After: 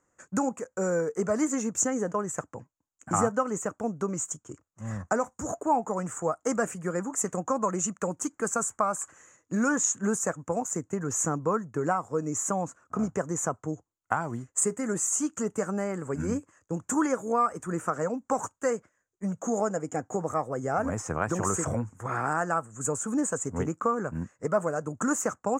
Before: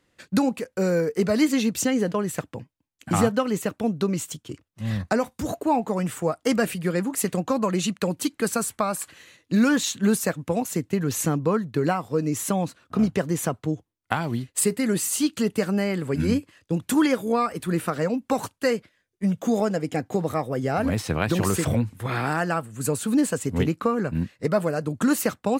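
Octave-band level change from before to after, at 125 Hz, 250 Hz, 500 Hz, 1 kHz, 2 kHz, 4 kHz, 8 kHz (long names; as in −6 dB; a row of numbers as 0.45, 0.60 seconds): −8.0, −7.5, −4.0, −0.5, −5.0, −18.0, +0.5 decibels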